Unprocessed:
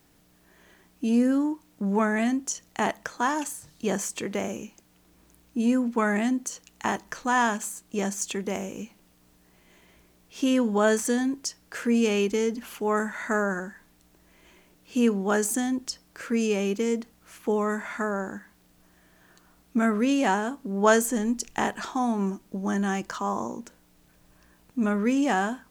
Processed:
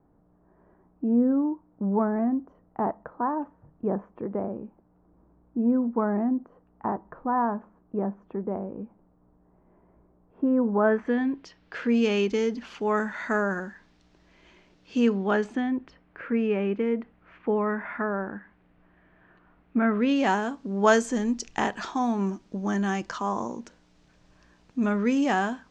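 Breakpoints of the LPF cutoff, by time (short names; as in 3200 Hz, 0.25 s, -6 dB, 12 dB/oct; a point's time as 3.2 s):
LPF 24 dB/oct
10.63 s 1100 Hz
11.19 s 2800 Hz
12.16 s 5400 Hz
15.05 s 5400 Hz
15.8 s 2400 Hz
19.81 s 2400 Hz
20.3 s 6300 Hz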